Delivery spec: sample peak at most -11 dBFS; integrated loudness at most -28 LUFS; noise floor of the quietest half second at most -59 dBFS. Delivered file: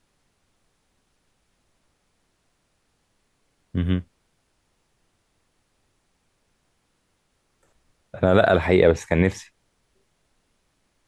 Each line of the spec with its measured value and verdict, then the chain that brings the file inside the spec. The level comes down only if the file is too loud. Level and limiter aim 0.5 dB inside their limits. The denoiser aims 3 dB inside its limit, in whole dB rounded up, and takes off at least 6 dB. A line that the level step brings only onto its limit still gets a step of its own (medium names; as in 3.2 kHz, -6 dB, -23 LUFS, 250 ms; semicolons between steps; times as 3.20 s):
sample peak -5.5 dBFS: fail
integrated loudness -20.5 LUFS: fail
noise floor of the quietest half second -70 dBFS: pass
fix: trim -8 dB